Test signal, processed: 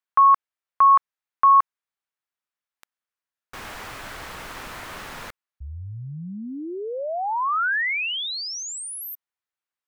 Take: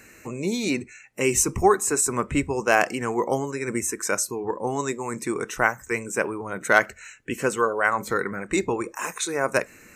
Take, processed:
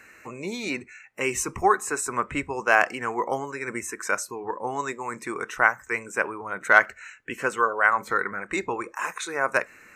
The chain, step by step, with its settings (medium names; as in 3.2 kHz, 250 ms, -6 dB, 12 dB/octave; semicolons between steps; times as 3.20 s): peaking EQ 1.4 kHz +12.5 dB 2.6 oct; trim -9.5 dB